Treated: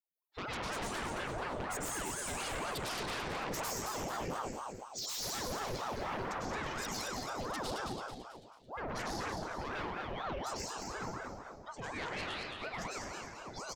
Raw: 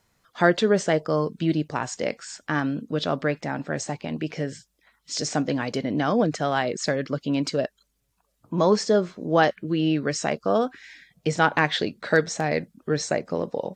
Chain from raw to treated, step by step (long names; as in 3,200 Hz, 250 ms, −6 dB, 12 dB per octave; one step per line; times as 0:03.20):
spectral dynamics exaggerated over time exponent 2
source passing by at 0:03.10, 31 m/s, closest 9.9 metres
high-shelf EQ 3,900 Hz +8.5 dB
downward compressor 6 to 1, threshold −45 dBFS, peak gain reduction 18 dB
dense smooth reverb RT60 1.2 s, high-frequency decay 0.75×, pre-delay 90 ms, DRR −5.5 dB
sine wavefolder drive 9 dB, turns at −33.5 dBFS
on a send: echo with shifted repeats 220 ms, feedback 45%, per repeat −130 Hz, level −5.5 dB
on the sum: ring modulator whose carrier an LFO sweeps 660 Hz, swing 65%, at 4.1 Hz